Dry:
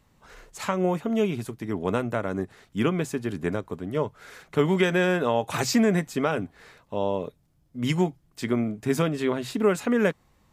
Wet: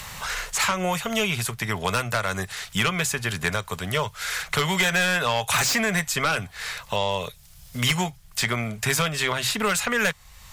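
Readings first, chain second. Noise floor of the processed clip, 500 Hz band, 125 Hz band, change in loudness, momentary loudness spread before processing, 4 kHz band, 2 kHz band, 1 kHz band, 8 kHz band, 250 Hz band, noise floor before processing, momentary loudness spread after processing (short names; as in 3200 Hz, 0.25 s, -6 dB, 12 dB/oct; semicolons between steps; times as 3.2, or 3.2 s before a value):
-49 dBFS, -4.0 dB, +1.0 dB, +2.0 dB, 11 LU, +11.5 dB, +9.0 dB, +5.0 dB, +12.0 dB, -5.5 dB, -65 dBFS, 8 LU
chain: passive tone stack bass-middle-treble 10-0-10; in parallel at -10 dB: sine folder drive 14 dB, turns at -15.5 dBFS; on the sum: three-band squash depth 70%; gain +5.5 dB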